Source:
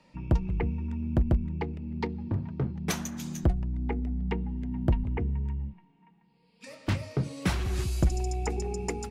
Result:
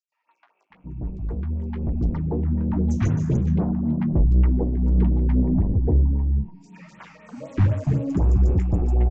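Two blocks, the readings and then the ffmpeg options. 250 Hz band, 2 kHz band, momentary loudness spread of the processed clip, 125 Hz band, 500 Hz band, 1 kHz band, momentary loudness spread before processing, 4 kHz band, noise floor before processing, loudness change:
+8.5 dB, -4.5 dB, 11 LU, +9.0 dB, +4.0 dB, -0.5 dB, 6 LU, under -10 dB, -64 dBFS, +9.0 dB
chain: -filter_complex "[0:a]equalizer=f=4000:w=1.7:g=-9.5,aresample=16000,asoftclip=type=tanh:threshold=0.0251,aresample=44100,dynaudnorm=f=560:g=5:m=3.98,tiltshelf=f=1300:g=8.5,flanger=delay=9.8:depth=9.1:regen=29:speed=1:shape=sinusoidal,acrossover=split=1000|4600[s0][s1][s2];[s1]adelay=120[s3];[s0]adelay=700[s4];[s4][s3][s2]amix=inputs=3:normalize=0,afftfilt=real='re*(1-between(b*sr/1024,400*pow(6100/400,0.5+0.5*sin(2*PI*3.9*pts/sr))/1.41,400*pow(6100/400,0.5+0.5*sin(2*PI*3.9*pts/sr))*1.41))':imag='im*(1-between(b*sr/1024,400*pow(6100/400,0.5+0.5*sin(2*PI*3.9*pts/sr))/1.41,400*pow(6100/400,0.5+0.5*sin(2*PI*3.9*pts/sr))*1.41))':win_size=1024:overlap=0.75"

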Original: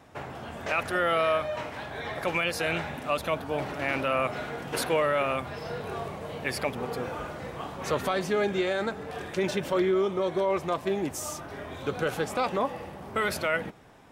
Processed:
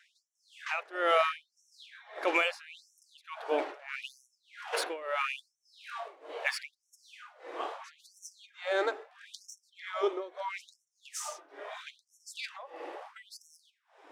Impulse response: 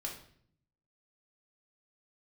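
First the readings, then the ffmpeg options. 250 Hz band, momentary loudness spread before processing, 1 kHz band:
-14.0 dB, 11 LU, -6.0 dB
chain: -af "tremolo=f=1.7:d=0.91,adynamicsmooth=sensitivity=6:basefreq=6500,afftfilt=real='re*gte(b*sr/1024,260*pow(5500/260,0.5+0.5*sin(2*PI*0.76*pts/sr)))':imag='im*gte(b*sr/1024,260*pow(5500/260,0.5+0.5*sin(2*PI*0.76*pts/sr)))':win_size=1024:overlap=0.75,volume=1.19"

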